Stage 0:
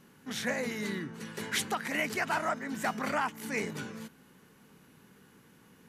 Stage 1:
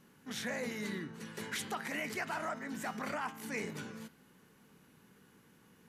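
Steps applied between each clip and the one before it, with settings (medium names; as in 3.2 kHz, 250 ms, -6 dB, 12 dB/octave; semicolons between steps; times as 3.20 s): de-hum 132.8 Hz, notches 38; peak limiter -23.5 dBFS, peak gain reduction 5.5 dB; trim -4 dB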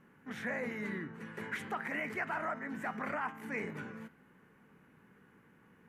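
resonant high shelf 2.9 kHz -12.5 dB, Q 1.5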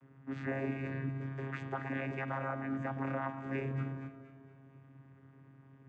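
vocoder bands 16, saw 135 Hz; echo whose repeats swap between lows and highs 117 ms, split 960 Hz, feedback 67%, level -8.5 dB; trim +2 dB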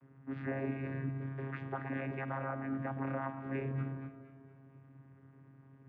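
distance through air 300 m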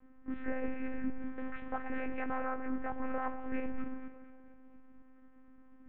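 tape echo 188 ms, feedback 58%, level -12.5 dB, low-pass 2.3 kHz; monotone LPC vocoder at 8 kHz 260 Hz; trim +3 dB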